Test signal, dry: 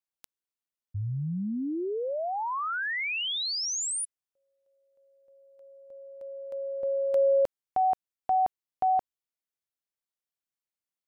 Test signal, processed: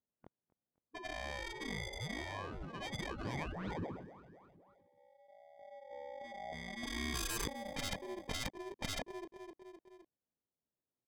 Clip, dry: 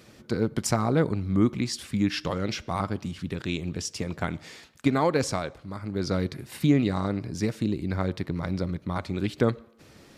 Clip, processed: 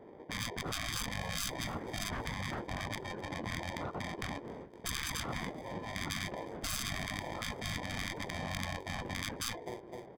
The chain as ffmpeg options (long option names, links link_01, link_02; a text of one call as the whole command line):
ffmpeg -i in.wav -filter_complex "[0:a]afftfilt=real='real(if(lt(b,272),68*(eq(floor(b/68),0)*3+eq(floor(b/68),1)*2+eq(floor(b/68),2)*1+eq(floor(b/68),3)*0)+mod(b,68),b),0)':imag='imag(if(lt(b,272),68*(eq(floor(b/68),0)*3+eq(floor(b/68),1)*2+eq(floor(b/68),2)*1+eq(floor(b/68),3)*0)+mod(b,68),b),0)':win_size=2048:overlap=0.75,lowpass=frequency=5500:width=0.5412,lowpass=frequency=5500:width=1.3066,flanger=delay=19:depth=4.9:speed=0.95,aeval=exprs='0.251*(cos(1*acos(clip(val(0)/0.251,-1,1)))-cos(1*PI/2))+0.0355*(cos(6*acos(clip(val(0)/0.251,-1,1)))-cos(6*PI/2))':channel_layout=same,acrossover=split=1900[link_01][link_02];[link_02]acrusher=samples=32:mix=1:aa=0.000001[link_03];[link_01][link_03]amix=inputs=2:normalize=0,highpass=frequency=180:poles=1,adynamicsmooth=sensitivity=3:basefreq=1600,asplit=2[link_04][link_05];[link_05]aecho=0:1:257|514|771|1028:0.075|0.0435|0.0252|0.0146[link_06];[link_04][link_06]amix=inputs=2:normalize=0,afftfilt=real='re*lt(hypot(re,im),0.0398)':imag='im*lt(hypot(re,im),0.0398)':win_size=1024:overlap=0.75,lowshelf=frequency=390:gain=10,volume=2dB" out.wav